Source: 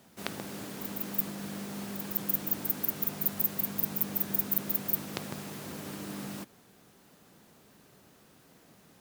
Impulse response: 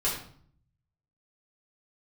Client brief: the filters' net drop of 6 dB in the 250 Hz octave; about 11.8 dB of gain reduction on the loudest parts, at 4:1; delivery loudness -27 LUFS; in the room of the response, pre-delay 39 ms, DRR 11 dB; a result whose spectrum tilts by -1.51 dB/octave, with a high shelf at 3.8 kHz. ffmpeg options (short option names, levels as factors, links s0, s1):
-filter_complex "[0:a]equalizer=f=250:t=o:g=-8.5,highshelf=f=3800:g=7,acompressor=threshold=0.0282:ratio=4,asplit=2[s0][s1];[1:a]atrim=start_sample=2205,adelay=39[s2];[s1][s2]afir=irnorm=-1:irlink=0,volume=0.106[s3];[s0][s3]amix=inputs=2:normalize=0,volume=2.37"